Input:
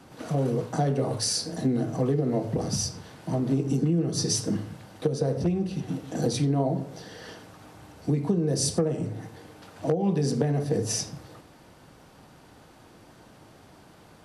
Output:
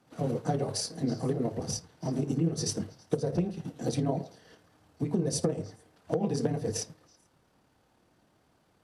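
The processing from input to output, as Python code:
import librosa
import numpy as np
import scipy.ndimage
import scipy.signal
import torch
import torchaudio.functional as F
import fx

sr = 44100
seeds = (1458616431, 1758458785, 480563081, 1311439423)

y = fx.stretch_grains(x, sr, factor=0.62, grain_ms=55.0)
y = fx.echo_stepped(y, sr, ms=109, hz=580.0, octaves=1.4, feedback_pct=70, wet_db=-9)
y = fx.upward_expand(y, sr, threshold_db=-48.0, expansion=1.5)
y = y * librosa.db_to_amplitude(-1.0)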